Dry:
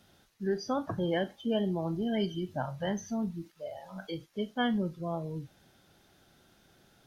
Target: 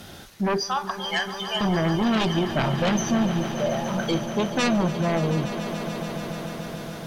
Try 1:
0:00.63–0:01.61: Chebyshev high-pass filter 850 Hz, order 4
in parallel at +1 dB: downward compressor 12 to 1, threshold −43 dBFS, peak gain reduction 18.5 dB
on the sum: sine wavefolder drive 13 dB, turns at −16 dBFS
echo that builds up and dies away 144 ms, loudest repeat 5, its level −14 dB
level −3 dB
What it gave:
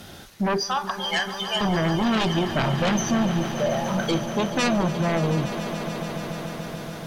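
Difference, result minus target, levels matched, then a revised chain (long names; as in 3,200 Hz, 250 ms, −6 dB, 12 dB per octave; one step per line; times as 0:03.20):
downward compressor: peak gain reduction −9 dB
0:00.63–0:01.61: Chebyshev high-pass filter 850 Hz, order 4
in parallel at +1 dB: downward compressor 12 to 1, threshold −53 dBFS, peak gain reduction 27.5 dB
on the sum: sine wavefolder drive 13 dB, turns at −16 dBFS
echo that builds up and dies away 144 ms, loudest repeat 5, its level −14 dB
level −3 dB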